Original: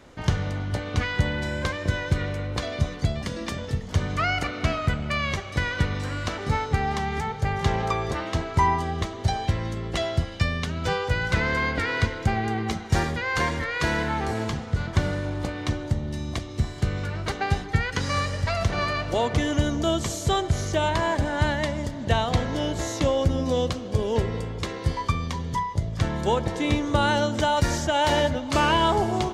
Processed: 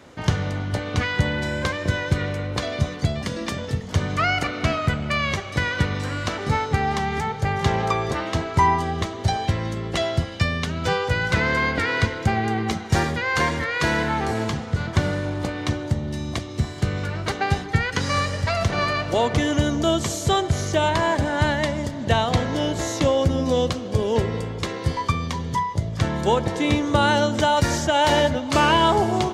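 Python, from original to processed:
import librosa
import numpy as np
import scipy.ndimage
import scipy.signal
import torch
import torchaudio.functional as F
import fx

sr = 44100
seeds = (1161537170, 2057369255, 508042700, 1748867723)

y = scipy.signal.sosfilt(scipy.signal.butter(2, 80.0, 'highpass', fs=sr, output='sos'), x)
y = y * librosa.db_to_amplitude(3.5)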